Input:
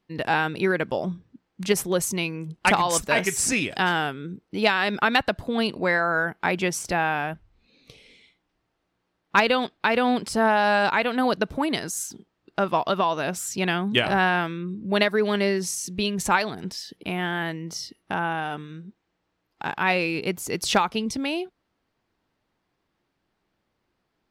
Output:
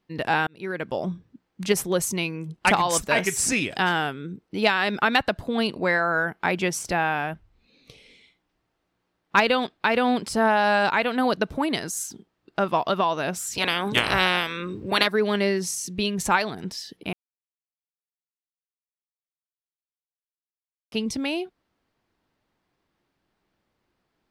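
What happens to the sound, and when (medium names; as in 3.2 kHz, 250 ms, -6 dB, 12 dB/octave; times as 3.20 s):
0.47–1.05 s: fade in
13.52–15.06 s: spectral peaks clipped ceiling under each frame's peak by 21 dB
17.13–20.92 s: mute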